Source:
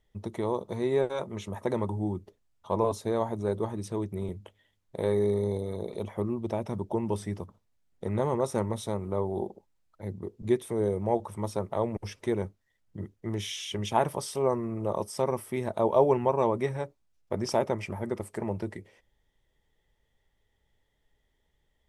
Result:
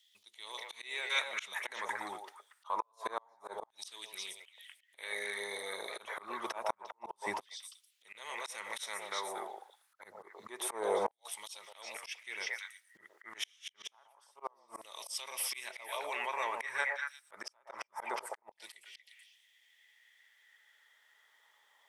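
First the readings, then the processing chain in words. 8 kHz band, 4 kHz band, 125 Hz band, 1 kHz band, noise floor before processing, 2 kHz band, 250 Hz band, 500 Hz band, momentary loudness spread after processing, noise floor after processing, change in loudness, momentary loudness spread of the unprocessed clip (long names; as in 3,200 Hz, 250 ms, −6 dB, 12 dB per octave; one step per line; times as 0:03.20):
+0.5 dB, +1.5 dB, below −35 dB, −6.5 dB, −74 dBFS, +7.0 dB, −23.5 dB, −15.5 dB, 18 LU, −74 dBFS, −9.0 dB, 12 LU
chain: brickwall limiter −21 dBFS, peak gain reduction 11.5 dB
echo through a band-pass that steps 117 ms, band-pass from 620 Hz, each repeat 1.4 octaves, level −2 dB
auto-filter high-pass saw down 0.27 Hz 870–3,600 Hz
gate with flip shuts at −26 dBFS, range −39 dB
volume swells 210 ms
level +10 dB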